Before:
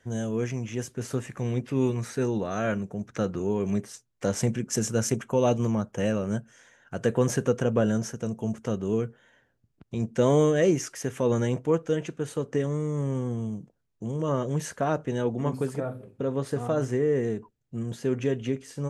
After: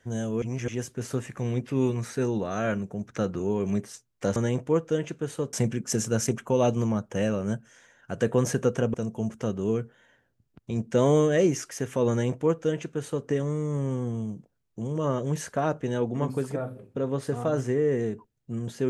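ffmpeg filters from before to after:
ffmpeg -i in.wav -filter_complex "[0:a]asplit=6[link_01][link_02][link_03][link_04][link_05][link_06];[link_01]atrim=end=0.422[link_07];[link_02]atrim=start=0.418:end=0.682,asetpts=PTS-STARTPTS,areverse[link_08];[link_03]atrim=start=0.678:end=4.362[link_09];[link_04]atrim=start=11.338:end=12.512[link_10];[link_05]atrim=start=4.358:end=7.772[link_11];[link_06]atrim=start=8.178[link_12];[link_07][link_08]acrossfade=duration=0.004:curve1=hsin:curve2=hsin[link_13];[link_13][link_09]acrossfade=duration=0.004:curve1=hsin:curve2=hsin[link_14];[link_14][link_10]acrossfade=duration=0.004:curve1=hsin:curve2=hsin[link_15];[link_15][link_11]acrossfade=duration=0.004:curve1=hsin:curve2=hsin[link_16];[link_16][link_12]acrossfade=duration=0.004:curve1=hsin:curve2=hsin" out.wav

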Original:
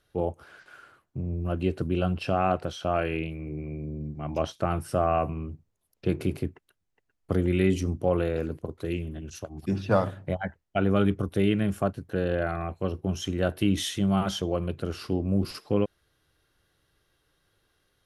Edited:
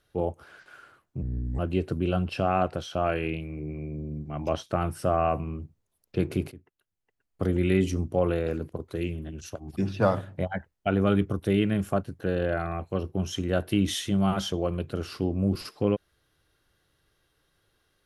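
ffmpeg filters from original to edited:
ffmpeg -i in.wav -filter_complex "[0:a]asplit=4[link_01][link_02][link_03][link_04];[link_01]atrim=end=1.224[link_05];[link_02]atrim=start=1.22:end=1.48,asetpts=PTS-STARTPTS,asetrate=31311,aresample=44100,atrim=end_sample=16149,asetpts=PTS-STARTPTS[link_06];[link_03]atrim=start=1.476:end=6.41,asetpts=PTS-STARTPTS,afade=type=out:start_time=4.93:duration=0.004:curve=hsin:silence=0.11885[link_07];[link_04]atrim=start=6.41,asetpts=PTS-STARTPTS,afade=type=in:duration=1.08:silence=0.11885[link_08];[link_05][link_06]acrossfade=duration=0.004:curve1=hsin:curve2=hsin[link_09];[link_07][link_08]concat=n=2:v=0:a=1[link_10];[link_09][link_10]acrossfade=duration=0.004:curve1=hsin:curve2=hsin" out.wav

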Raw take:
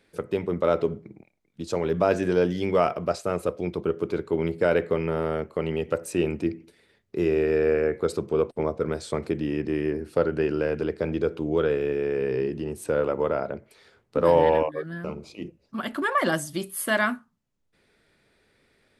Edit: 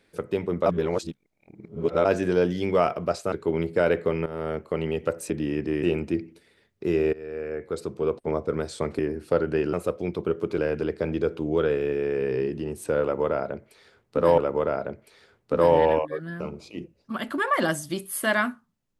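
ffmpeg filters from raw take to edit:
ffmpeg -i in.wav -filter_complex "[0:a]asplit=12[link_01][link_02][link_03][link_04][link_05][link_06][link_07][link_08][link_09][link_10][link_11][link_12];[link_01]atrim=end=0.662[link_13];[link_02]atrim=start=0.658:end=2.052,asetpts=PTS-STARTPTS,areverse[link_14];[link_03]atrim=start=2.048:end=3.322[link_15];[link_04]atrim=start=4.168:end=5.11,asetpts=PTS-STARTPTS,afade=type=out:start_time=0.938:duration=0.004:curve=hsin:silence=0.211349[link_16];[link_05]atrim=start=5.11:end=6.152,asetpts=PTS-STARTPTS,afade=type=in:duration=0.42:curve=qsin:silence=0.211349[link_17];[link_06]atrim=start=9.308:end=9.842[link_18];[link_07]atrim=start=6.148:end=7.45,asetpts=PTS-STARTPTS,afade=type=out:start_time=1.298:duration=0.004:curve=hsin:silence=0.0944061[link_19];[link_08]atrim=start=7.45:end=9.312,asetpts=PTS-STARTPTS,afade=type=in:duration=1.24:silence=0.0944061[link_20];[link_09]atrim=start=9.838:end=10.582[link_21];[link_10]atrim=start=3.318:end=4.172[link_22];[link_11]atrim=start=10.578:end=14.382[link_23];[link_12]atrim=start=13.018[link_24];[link_13][link_14]acrossfade=duration=0.004:curve1=hsin:curve2=hsin[link_25];[link_25][link_15]acrossfade=duration=0.004:curve1=hsin:curve2=hsin[link_26];[link_16][link_17]concat=n=2:v=0:a=1[link_27];[link_26][link_27]acrossfade=duration=0.004:curve1=hsin:curve2=hsin[link_28];[link_28][link_18]acrossfade=duration=0.004:curve1=hsin:curve2=hsin[link_29];[link_19][link_20]concat=n=2:v=0:a=1[link_30];[link_29][link_30]acrossfade=duration=0.004:curve1=hsin:curve2=hsin[link_31];[link_31][link_21]acrossfade=duration=0.004:curve1=hsin:curve2=hsin[link_32];[link_32][link_22]acrossfade=duration=0.004:curve1=hsin:curve2=hsin[link_33];[link_33][link_23]acrossfade=duration=0.004:curve1=hsin:curve2=hsin[link_34];[link_34][link_24]acrossfade=duration=0.004:curve1=hsin:curve2=hsin" out.wav

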